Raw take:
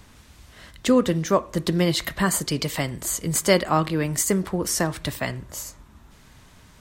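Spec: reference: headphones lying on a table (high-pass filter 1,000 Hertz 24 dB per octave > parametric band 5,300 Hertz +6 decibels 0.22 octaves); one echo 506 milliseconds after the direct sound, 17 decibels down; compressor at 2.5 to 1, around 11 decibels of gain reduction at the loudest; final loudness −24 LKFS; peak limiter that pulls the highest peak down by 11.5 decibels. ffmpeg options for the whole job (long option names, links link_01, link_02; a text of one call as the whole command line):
ffmpeg -i in.wav -af "acompressor=threshold=-30dB:ratio=2.5,alimiter=level_in=2dB:limit=-24dB:level=0:latency=1,volume=-2dB,highpass=frequency=1000:width=0.5412,highpass=frequency=1000:width=1.3066,equalizer=frequency=5300:width_type=o:width=0.22:gain=6,aecho=1:1:506:0.141,volume=14.5dB" out.wav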